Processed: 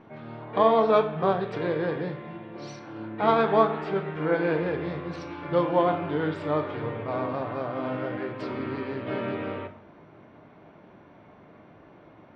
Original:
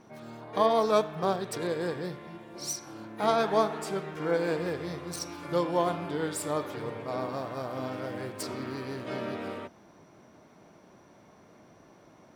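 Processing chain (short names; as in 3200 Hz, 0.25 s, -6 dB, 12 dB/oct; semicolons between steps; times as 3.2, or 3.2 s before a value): LPF 3200 Hz 24 dB/oct; reverb RT60 0.60 s, pre-delay 7 ms, DRR 7.5 dB; gain +3.5 dB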